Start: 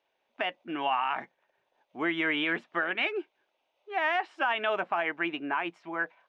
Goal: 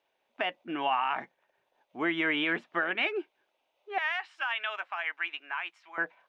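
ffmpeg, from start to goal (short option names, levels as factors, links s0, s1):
-filter_complex "[0:a]asettb=1/sr,asplit=3[s0][s1][s2];[s0]atrim=end=3.984[s3];[s1]atrim=start=3.98:end=5.98,asetpts=PTS-STARTPTS,afade=t=in:d=0.004:c=qsin,afade=t=out:st=1.996:d=0.004:c=qsin,highpass=1400[s4];[s2]atrim=start=5.976[s5];[s3][s4]acrossfade=d=0.004:c1=hsin:c2=qsin[s6];[s6][s5]acrossfade=d=0.004:c1=qsin:c2=hsin"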